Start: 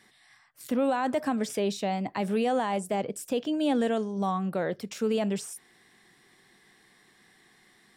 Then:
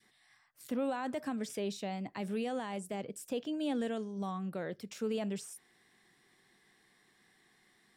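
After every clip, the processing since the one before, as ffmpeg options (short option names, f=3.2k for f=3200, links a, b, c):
-af "adynamicequalizer=threshold=0.00794:dfrequency=790:dqfactor=0.98:tfrequency=790:tqfactor=0.98:attack=5:release=100:ratio=0.375:range=3:mode=cutabove:tftype=bell,volume=-7.5dB"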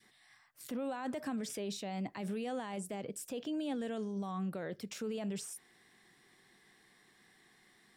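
-af "alimiter=level_in=9.5dB:limit=-24dB:level=0:latency=1:release=36,volume=-9.5dB,volume=2.5dB"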